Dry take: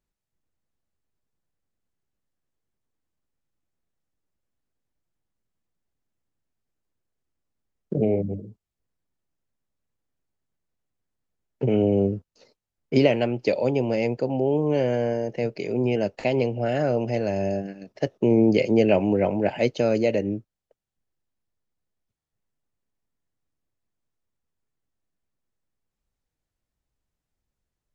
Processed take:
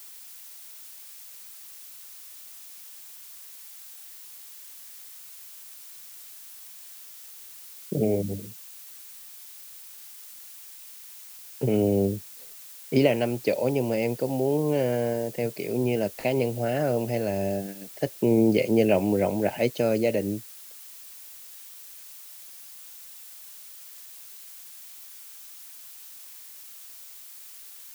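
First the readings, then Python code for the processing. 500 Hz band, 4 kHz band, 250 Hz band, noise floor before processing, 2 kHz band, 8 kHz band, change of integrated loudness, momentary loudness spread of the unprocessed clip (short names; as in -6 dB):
-2.0 dB, -0.5 dB, -2.0 dB, under -85 dBFS, -2.0 dB, n/a, -2.0 dB, 11 LU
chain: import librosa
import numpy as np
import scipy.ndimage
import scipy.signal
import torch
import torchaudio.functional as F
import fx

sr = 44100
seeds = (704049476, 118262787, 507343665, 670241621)

y = fx.dmg_noise_colour(x, sr, seeds[0], colour='blue', level_db=-43.0)
y = y * librosa.db_to_amplitude(-2.0)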